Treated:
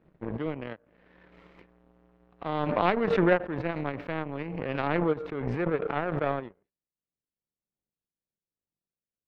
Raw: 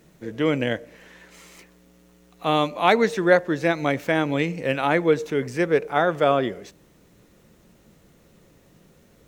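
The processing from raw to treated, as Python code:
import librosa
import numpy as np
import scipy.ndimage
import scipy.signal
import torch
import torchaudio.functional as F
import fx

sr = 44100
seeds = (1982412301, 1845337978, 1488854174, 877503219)

y = fx.high_shelf(x, sr, hz=2500.0, db=-9.5)
y = fx.power_curve(y, sr, exponent=2.0)
y = fx.air_absorb(y, sr, metres=390.0)
y = fx.pre_swell(y, sr, db_per_s=21.0)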